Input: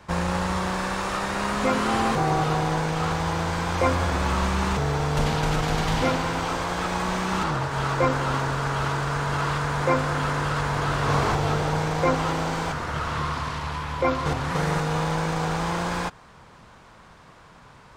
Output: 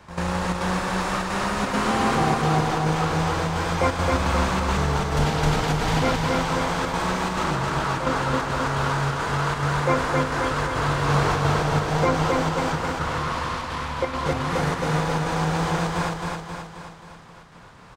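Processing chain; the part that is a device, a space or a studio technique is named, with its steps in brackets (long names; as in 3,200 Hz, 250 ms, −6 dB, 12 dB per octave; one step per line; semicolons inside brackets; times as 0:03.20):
trance gate with a delay (gate pattern "x.xxxx.xxxxxx" 173 BPM −12 dB; repeating echo 266 ms, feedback 55%, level −3 dB)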